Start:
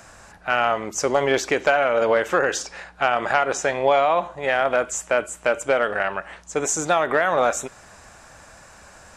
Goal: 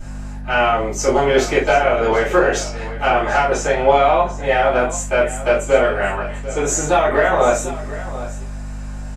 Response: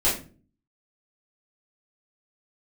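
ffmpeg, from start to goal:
-filter_complex "[0:a]aeval=exprs='val(0)+0.02*(sin(2*PI*50*n/s)+sin(2*PI*2*50*n/s)/2+sin(2*PI*3*50*n/s)/3+sin(2*PI*4*50*n/s)/4+sin(2*PI*5*50*n/s)/5)':c=same,aecho=1:1:742:0.178[s0];[1:a]atrim=start_sample=2205,afade=t=out:st=0.15:d=0.01,atrim=end_sample=7056[s1];[s0][s1]afir=irnorm=-1:irlink=0,volume=0.335"

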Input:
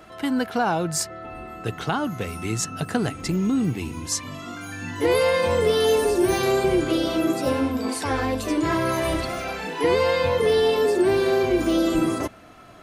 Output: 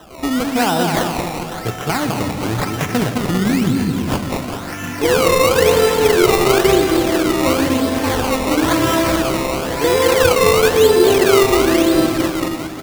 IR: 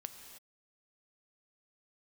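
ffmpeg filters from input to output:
-filter_complex "[0:a]aecho=1:1:210|399|569.1|722.2|860:0.631|0.398|0.251|0.158|0.1,acrusher=samples=19:mix=1:aa=0.000001:lfo=1:lforange=19:lforate=0.98,asplit=2[s0][s1];[1:a]atrim=start_sample=2205[s2];[s1][s2]afir=irnorm=-1:irlink=0,volume=2.66[s3];[s0][s3]amix=inputs=2:normalize=0,volume=0.668"

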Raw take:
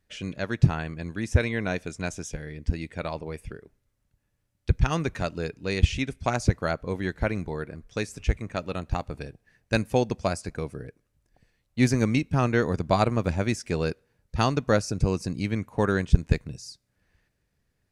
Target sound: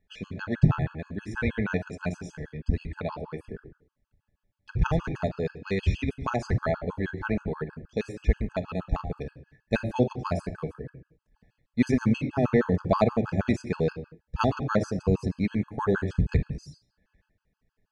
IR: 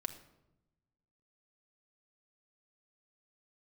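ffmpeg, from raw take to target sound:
-filter_complex "[0:a]aemphasis=mode=reproduction:type=75fm[s0];[1:a]atrim=start_sample=2205,afade=t=out:st=0.31:d=0.01,atrim=end_sample=14112[s1];[s0][s1]afir=irnorm=-1:irlink=0,afftfilt=real='re*gt(sin(2*PI*6.3*pts/sr)*(1-2*mod(floor(b*sr/1024/840),2)),0)':imag='im*gt(sin(2*PI*6.3*pts/sr)*(1-2*mod(floor(b*sr/1024/840),2)),0)':win_size=1024:overlap=0.75,volume=1.33"

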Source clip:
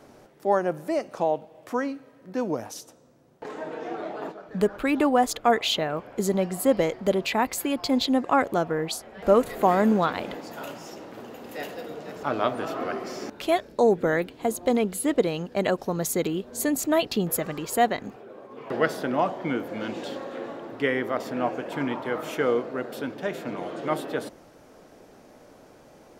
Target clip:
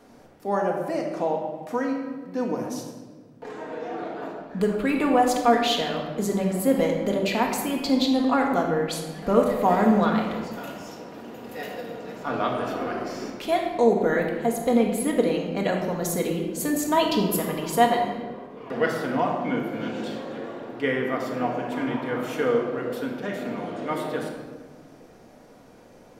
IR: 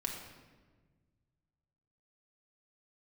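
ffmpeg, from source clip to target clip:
-filter_complex "[0:a]asettb=1/sr,asplit=3[s0][s1][s2];[s0]atrim=end=16.874[s3];[s1]atrim=start=16.87:end=18.47,asetpts=PTS-STARTPTS,afade=t=in:d=0.004:c=qsin,afade=t=out:st=1.596:d=0.004:c=qsin,equalizer=f=400:t=o:w=0.33:g=4,equalizer=f=1000:t=o:w=0.33:g=10,equalizer=f=3150:t=o:w=0.33:g=5,equalizer=f=5000:t=o:w=0.33:g=3[s4];[s2]atrim=start=18.466[s5];[s3][s4]acrossfade=d=0.004:c1=hsin:c2=qsin[s6];[s6][s5]acrossfade=d=0.004:c1=qsin:c2=hsin[s7];[1:a]atrim=start_sample=2205[s8];[s7][s8]afir=irnorm=-1:irlink=0,volume=0.891"

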